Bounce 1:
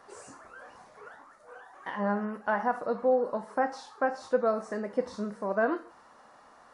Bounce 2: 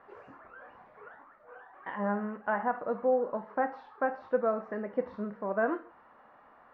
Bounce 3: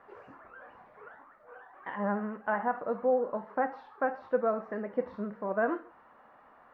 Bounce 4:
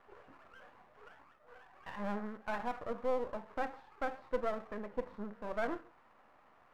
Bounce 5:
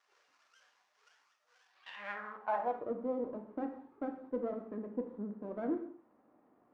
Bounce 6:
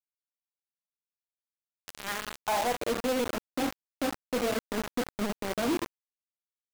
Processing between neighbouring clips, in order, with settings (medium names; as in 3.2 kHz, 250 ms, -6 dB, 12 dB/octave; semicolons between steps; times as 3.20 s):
low-pass 2.6 kHz 24 dB/octave; trim -2 dB
vibrato 13 Hz 32 cents
partial rectifier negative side -12 dB; trim -3.5 dB
gated-style reverb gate 250 ms falling, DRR 6.5 dB; band-pass sweep 5.8 kHz -> 280 Hz, 1.65–2.97 s; trim +8.5 dB
companded quantiser 2-bit